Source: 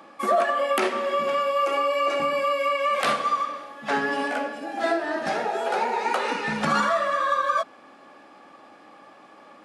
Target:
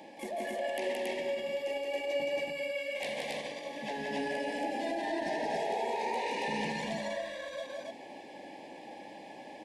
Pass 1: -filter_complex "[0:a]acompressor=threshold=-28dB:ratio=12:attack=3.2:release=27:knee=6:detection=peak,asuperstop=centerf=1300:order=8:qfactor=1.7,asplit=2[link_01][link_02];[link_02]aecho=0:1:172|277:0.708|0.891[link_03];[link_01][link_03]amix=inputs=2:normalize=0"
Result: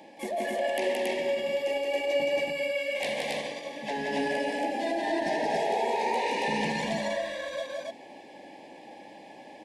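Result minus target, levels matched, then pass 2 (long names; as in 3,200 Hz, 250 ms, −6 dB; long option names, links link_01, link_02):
downward compressor: peak gain reduction −6 dB
-filter_complex "[0:a]acompressor=threshold=-34.5dB:ratio=12:attack=3.2:release=27:knee=6:detection=peak,asuperstop=centerf=1300:order=8:qfactor=1.7,asplit=2[link_01][link_02];[link_02]aecho=0:1:172|277:0.708|0.891[link_03];[link_01][link_03]amix=inputs=2:normalize=0"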